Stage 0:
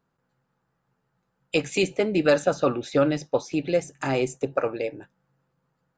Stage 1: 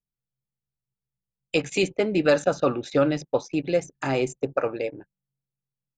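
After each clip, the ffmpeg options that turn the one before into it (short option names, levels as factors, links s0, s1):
-af "anlmdn=0.251"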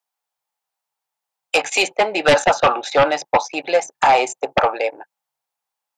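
-af "highpass=f=810:t=q:w=4.1,aeval=exprs='0.562*sin(PI/2*3.16*val(0)/0.562)':c=same,volume=0.708"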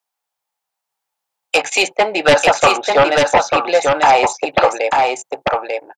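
-af "aecho=1:1:893:0.668,volume=1.33"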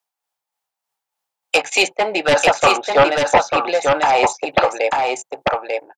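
-af "tremolo=f=3.3:d=0.47"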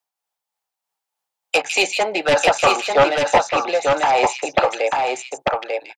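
-filter_complex "[0:a]acrossover=split=290|750|2000[s0][s1][s2][s3];[s1]crystalizer=i=9.5:c=0[s4];[s3]aecho=1:1:155:0.596[s5];[s0][s4][s2][s5]amix=inputs=4:normalize=0,volume=0.75"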